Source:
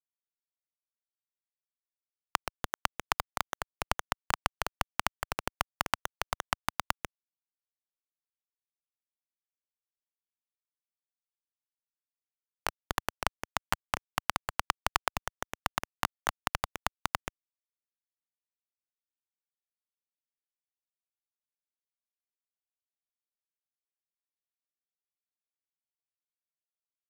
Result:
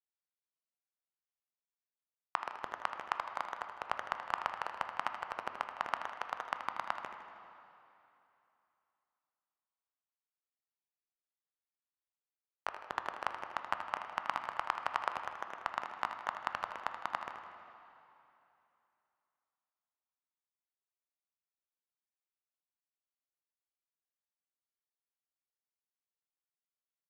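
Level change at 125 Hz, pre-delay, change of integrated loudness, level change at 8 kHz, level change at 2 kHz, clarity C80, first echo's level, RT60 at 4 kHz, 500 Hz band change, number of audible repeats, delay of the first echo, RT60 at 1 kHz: -18.0 dB, 7 ms, -4.5 dB, -19.0 dB, -5.0 dB, 7.5 dB, -10.0 dB, 2.6 s, -4.5 dB, 3, 79 ms, 2.9 s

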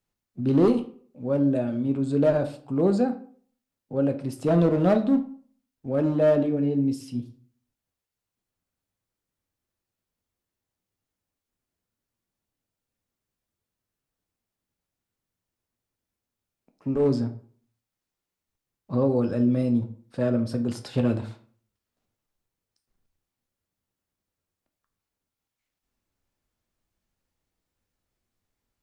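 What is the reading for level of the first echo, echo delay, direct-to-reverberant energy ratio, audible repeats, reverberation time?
no echo, no echo, 6.0 dB, no echo, 0.50 s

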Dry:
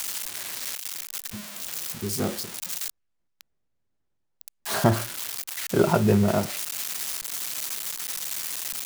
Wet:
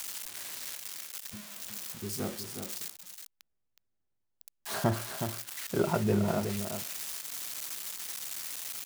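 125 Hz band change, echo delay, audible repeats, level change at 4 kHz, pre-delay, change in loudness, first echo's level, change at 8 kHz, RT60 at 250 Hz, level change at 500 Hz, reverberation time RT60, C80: -7.5 dB, 368 ms, 1, -7.5 dB, no reverb, -7.5 dB, -7.5 dB, -7.5 dB, no reverb, -7.0 dB, no reverb, no reverb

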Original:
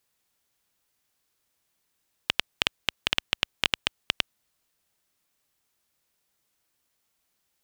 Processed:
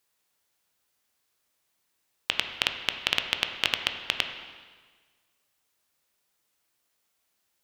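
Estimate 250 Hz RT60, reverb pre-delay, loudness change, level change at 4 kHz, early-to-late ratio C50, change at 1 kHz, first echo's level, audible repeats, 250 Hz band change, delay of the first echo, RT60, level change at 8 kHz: 1.5 s, 6 ms, +0.5 dB, +0.5 dB, 7.0 dB, +1.0 dB, no echo, no echo, -1.5 dB, no echo, 1.5 s, 0.0 dB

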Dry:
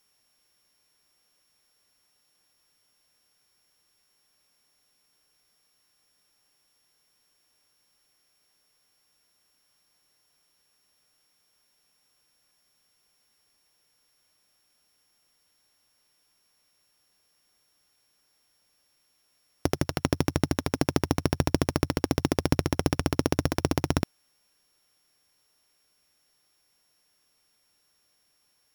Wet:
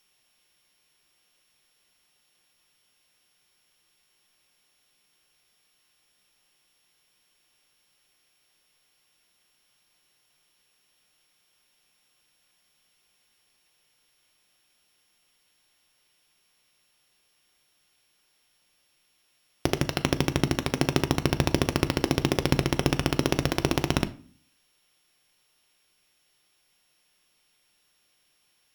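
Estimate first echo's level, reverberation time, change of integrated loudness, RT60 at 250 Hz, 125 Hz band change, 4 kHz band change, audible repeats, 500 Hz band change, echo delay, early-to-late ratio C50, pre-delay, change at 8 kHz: no echo, 0.45 s, +1.5 dB, 0.75 s, +1.0 dB, +5.0 dB, no echo, +1.0 dB, no echo, 18.0 dB, 3 ms, +1.5 dB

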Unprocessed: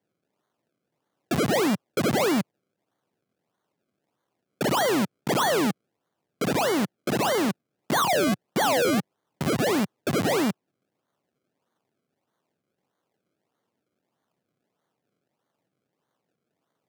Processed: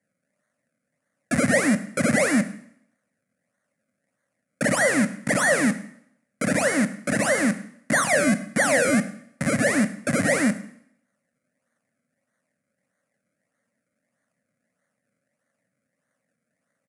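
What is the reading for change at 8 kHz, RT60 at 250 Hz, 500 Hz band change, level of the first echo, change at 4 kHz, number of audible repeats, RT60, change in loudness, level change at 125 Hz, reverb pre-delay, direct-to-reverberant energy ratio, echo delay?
+6.5 dB, 0.65 s, +1.0 dB, -22.0 dB, -4.5 dB, 1, 0.70 s, +2.5 dB, +2.0 dB, 6 ms, 11.0 dB, 104 ms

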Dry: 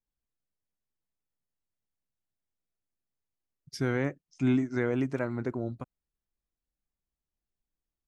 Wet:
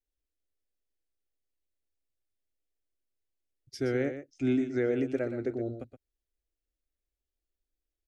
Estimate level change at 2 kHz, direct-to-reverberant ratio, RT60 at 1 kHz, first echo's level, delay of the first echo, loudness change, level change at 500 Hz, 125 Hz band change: -3.5 dB, no reverb, no reverb, -10.0 dB, 121 ms, -0.5 dB, +2.5 dB, -5.5 dB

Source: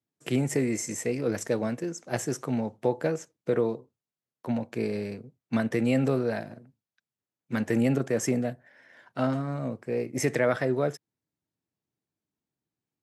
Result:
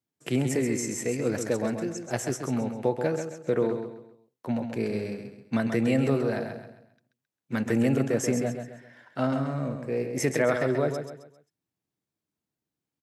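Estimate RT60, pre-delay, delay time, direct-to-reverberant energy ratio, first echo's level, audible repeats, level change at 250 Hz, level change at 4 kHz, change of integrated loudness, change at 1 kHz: no reverb, no reverb, 133 ms, no reverb, -7.0 dB, 4, +1.0 dB, +1.0 dB, +0.5 dB, +1.0 dB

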